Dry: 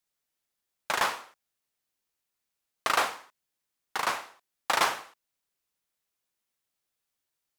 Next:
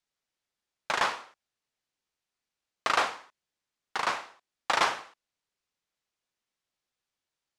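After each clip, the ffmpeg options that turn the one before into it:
-af "lowpass=6.5k"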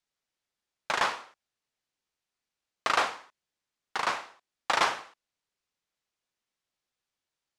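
-af anull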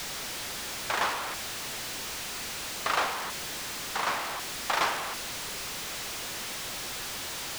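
-af "aeval=exprs='val(0)+0.5*0.0596*sgn(val(0))':c=same,volume=-4.5dB"

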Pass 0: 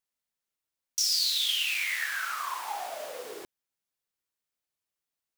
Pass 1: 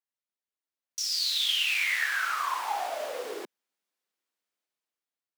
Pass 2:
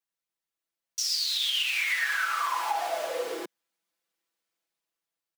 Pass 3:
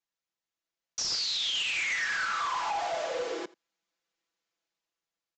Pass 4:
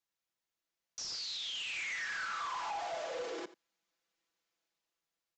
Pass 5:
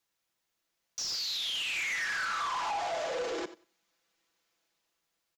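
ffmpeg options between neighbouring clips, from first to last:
-af "dynaudnorm=f=460:g=5:m=12dB,highpass=f=210:w=0.5412,highpass=f=210:w=1.3066,highshelf=f=6.1k:g=-8,volume=-7dB"
-af "aecho=1:1:6:1,alimiter=limit=-18.5dB:level=0:latency=1:release=151"
-af "aresample=16000,asoftclip=type=hard:threshold=-27.5dB,aresample=44100,aecho=1:1:84:0.0794"
-af "alimiter=level_in=10dB:limit=-24dB:level=0:latency=1:release=18,volume=-10dB"
-af "asoftclip=type=tanh:threshold=-36.5dB,aecho=1:1:93|186:0.0708|0.0248,volume=8dB"

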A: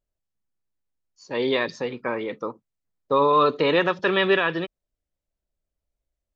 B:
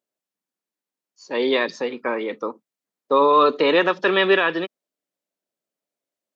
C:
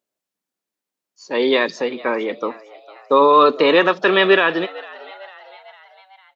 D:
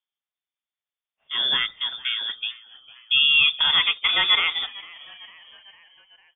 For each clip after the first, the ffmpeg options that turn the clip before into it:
-af "highpass=f=210:w=0.5412,highpass=f=210:w=1.3066,volume=3dB"
-filter_complex "[0:a]asplit=5[a][b][c][d][e];[b]adelay=452,afreqshift=96,volume=-21dB[f];[c]adelay=904,afreqshift=192,volume=-25.9dB[g];[d]adelay=1356,afreqshift=288,volume=-30.8dB[h];[e]adelay=1808,afreqshift=384,volume=-35.6dB[i];[a][f][g][h][i]amix=inputs=5:normalize=0,volume=3.5dB"
-af "lowpass=f=3.2k:t=q:w=0.5098,lowpass=f=3.2k:t=q:w=0.6013,lowpass=f=3.2k:t=q:w=0.9,lowpass=f=3.2k:t=q:w=2.563,afreqshift=-3800,volume=-6dB"

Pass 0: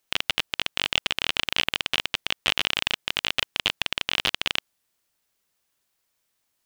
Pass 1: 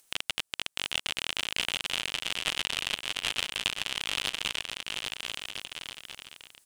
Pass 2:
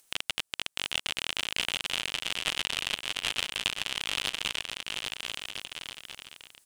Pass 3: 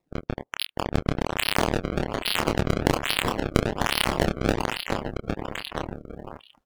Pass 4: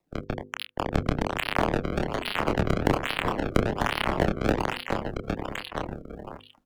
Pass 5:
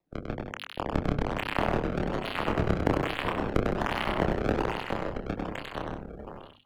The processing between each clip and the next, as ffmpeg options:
-filter_complex "[0:a]equalizer=f=8.9k:w=1.1:g=11,acompressor=mode=upward:threshold=-44dB:ratio=2.5,asplit=2[a][b];[b]aecho=0:1:790|1304|1637|1854|1995:0.631|0.398|0.251|0.158|0.1[c];[a][c]amix=inputs=2:normalize=0,volume=-8.5dB"
-af anull
-filter_complex "[0:a]acrusher=samples=28:mix=1:aa=0.000001:lfo=1:lforange=44.8:lforate=1.2,asplit=2[a][b];[b]adelay=28,volume=-3.5dB[c];[a][c]amix=inputs=2:normalize=0,afftdn=nr=24:nf=-47,volume=7dB"
-filter_complex "[0:a]bandreject=f=50:t=h:w=6,bandreject=f=100:t=h:w=6,bandreject=f=150:t=h:w=6,bandreject=f=200:t=h:w=6,bandreject=f=250:t=h:w=6,bandreject=f=300:t=h:w=6,bandreject=f=350:t=h:w=6,bandreject=f=400:t=h:w=6,bandreject=f=450:t=h:w=6,bandreject=f=500:t=h:w=6,acrossover=split=290|440|2700[a][b][c][d];[d]acompressor=threshold=-41dB:ratio=5[e];[a][b][c][e]amix=inputs=4:normalize=0"
-filter_complex "[0:a]highshelf=f=4k:g=-7.5,asplit=2[a][b];[b]aecho=0:1:99.13|160.3:0.631|0.316[c];[a][c]amix=inputs=2:normalize=0,volume=-3.5dB"

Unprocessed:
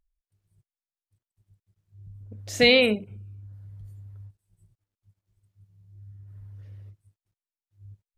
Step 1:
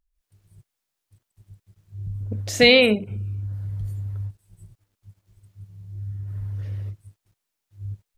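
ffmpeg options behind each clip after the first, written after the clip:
-af "dynaudnorm=f=120:g=3:m=15dB,volume=-1dB"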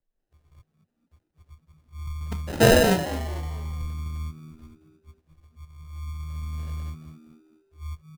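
-filter_complex "[0:a]afreqshift=-24,acrusher=samples=39:mix=1:aa=0.000001,asplit=5[a][b][c][d][e];[b]adelay=222,afreqshift=79,volume=-13dB[f];[c]adelay=444,afreqshift=158,volume=-20.7dB[g];[d]adelay=666,afreqshift=237,volume=-28.5dB[h];[e]adelay=888,afreqshift=316,volume=-36.2dB[i];[a][f][g][h][i]amix=inputs=5:normalize=0,volume=-2dB"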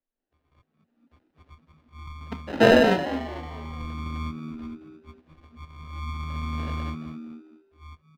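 -filter_complex "[0:a]acrossover=split=410 4200:gain=0.251 1 0.0891[a][b][c];[a][b][c]amix=inputs=3:normalize=0,dynaudnorm=f=230:g=9:m=15dB,equalizer=f=250:t=o:w=0.69:g=14,volume=-3dB"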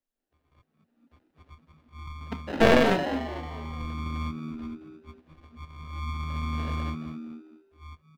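-af "aeval=exprs='clip(val(0),-1,0.0596)':c=same"

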